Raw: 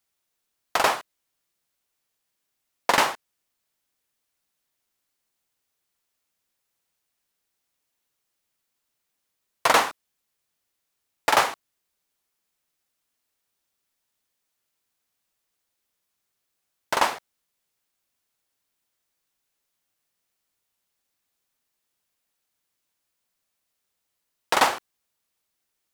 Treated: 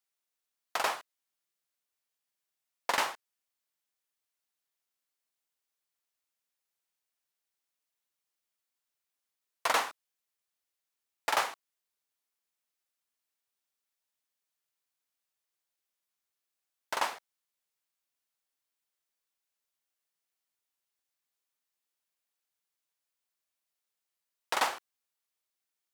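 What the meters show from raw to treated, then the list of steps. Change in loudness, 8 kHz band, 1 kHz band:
-9.5 dB, -8.5 dB, -9.5 dB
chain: bass shelf 320 Hz -10 dB; trim -8.5 dB

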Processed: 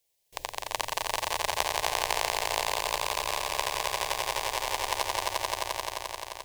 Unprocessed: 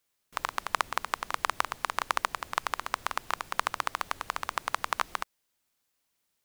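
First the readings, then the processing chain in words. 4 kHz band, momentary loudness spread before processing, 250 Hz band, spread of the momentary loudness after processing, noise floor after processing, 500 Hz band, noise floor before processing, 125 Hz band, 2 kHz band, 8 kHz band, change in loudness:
+8.0 dB, 4 LU, +2.0 dB, 7 LU, -54 dBFS, +9.5 dB, -78 dBFS, +7.0 dB, +1.0 dB, +9.5 dB, +3.0 dB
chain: static phaser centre 550 Hz, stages 4; on a send: echo with a slow build-up 87 ms, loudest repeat 5, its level -4 dB; on the sum: trim +3 dB

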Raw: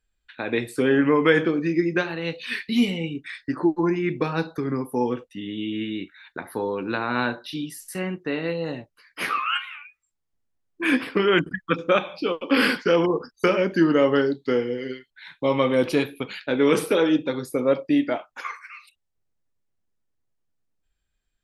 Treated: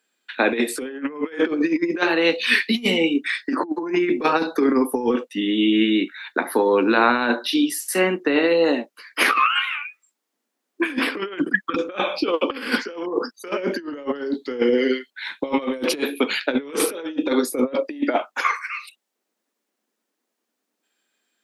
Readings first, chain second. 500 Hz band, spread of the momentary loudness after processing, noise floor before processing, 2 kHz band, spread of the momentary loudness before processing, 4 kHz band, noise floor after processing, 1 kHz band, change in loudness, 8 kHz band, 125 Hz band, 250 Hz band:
+1.0 dB, 9 LU, -76 dBFS, +4.5 dB, 13 LU, +5.5 dB, -80 dBFS, +4.5 dB, +2.0 dB, +10.0 dB, -8.5 dB, +2.0 dB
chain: steep high-pass 220 Hz 48 dB/octave; compressor with a negative ratio -27 dBFS, ratio -0.5; trim +7 dB

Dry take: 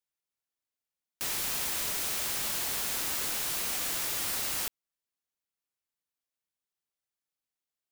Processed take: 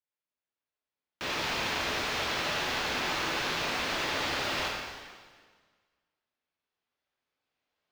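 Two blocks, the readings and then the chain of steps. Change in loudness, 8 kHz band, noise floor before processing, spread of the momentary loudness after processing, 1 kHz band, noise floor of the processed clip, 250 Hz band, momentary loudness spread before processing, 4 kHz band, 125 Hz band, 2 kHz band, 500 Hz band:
-0.5 dB, -9.5 dB, under -85 dBFS, 8 LU, +9.0 dB, under -85 dBFS, +8.5 dB, 2 LU, +4.0 dB, +6.5 dB, +8.0 dB, +9.5 dB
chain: recorder AGC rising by 5.1 dB/s; bass shelf 150 Hz -6.5 dB; waveshaping leveller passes 2; distance through air 230 m; plate-style reverb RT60 1.6 s, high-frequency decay 0.95×, DRR -3 dB

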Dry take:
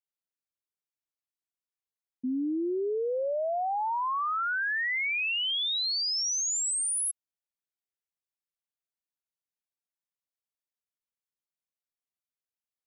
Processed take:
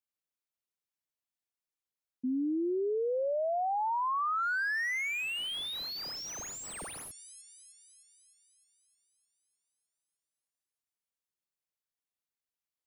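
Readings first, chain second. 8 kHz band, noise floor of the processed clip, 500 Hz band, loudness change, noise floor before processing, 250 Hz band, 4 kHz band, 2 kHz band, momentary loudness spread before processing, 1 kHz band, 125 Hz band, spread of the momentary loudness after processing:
-13.5 dB, under -85 dBFS, -1.5 dB, -4.5 dB, under -85 dBFS, -1.5 dB, -8.5 dB, -3.0 dB, 5 LU, -1.5 dB, no reading, 11 LU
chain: feedback echo behind a high-pass 306 ms, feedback 62%, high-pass 1.9 kHz, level -23 dB; slew-rate limiter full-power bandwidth 61 Hz; trim -1.5 dB

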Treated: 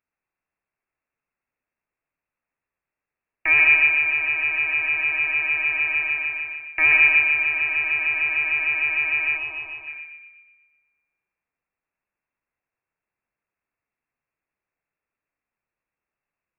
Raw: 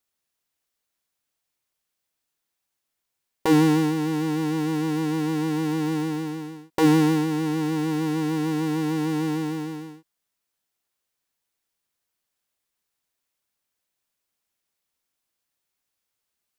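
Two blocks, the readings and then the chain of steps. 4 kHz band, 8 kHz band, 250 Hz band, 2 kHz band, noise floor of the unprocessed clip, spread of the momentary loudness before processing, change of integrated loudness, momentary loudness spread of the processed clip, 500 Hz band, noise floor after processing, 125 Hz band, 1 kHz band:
0.0 dB, under -35 dB, under -25 dB, +20.5 dB, -82 dBFS, 12 LU, +5.5 dB, 15 LU, -16.0 dB, under -85 dBFS, under -20 dB, -6.0 dB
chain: de-hum 85.31 Hz, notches 29; on a send: filtered feedback delay 121 ms, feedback 52%, low-pass 1.8 kHz, level -4 dB; on the sum: Schroeder reverb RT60 1.9 s, combs from 29 ms, DRR 19.5 dB; time-frequency box 9.37–9.88 s, 250–1400 Hz -10 dB; frequency inversion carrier 2.7 kHz

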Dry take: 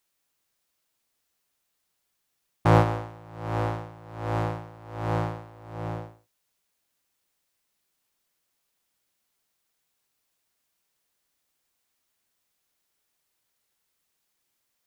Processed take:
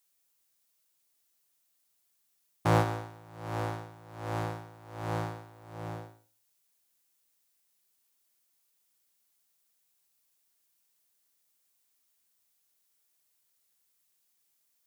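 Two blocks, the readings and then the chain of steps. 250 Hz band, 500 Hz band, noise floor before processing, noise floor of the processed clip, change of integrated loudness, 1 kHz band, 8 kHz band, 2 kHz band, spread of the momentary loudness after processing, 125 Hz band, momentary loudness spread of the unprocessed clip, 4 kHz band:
-6.5 dB, -6.0 dB, -78 dBFS, -74 dBFS, -6.0 dB, -5.5 dB, no reading, -4.0 dB, 19 LU, -7.0 dB, 20 LU, -2.0 dB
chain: high-pass 77 Hz; treble shelf 4.9 kHz +11 dB; Schroeder reverb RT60 0.45 s, combs from 31 ms, DRR 14.5 dB; trim -6 dB

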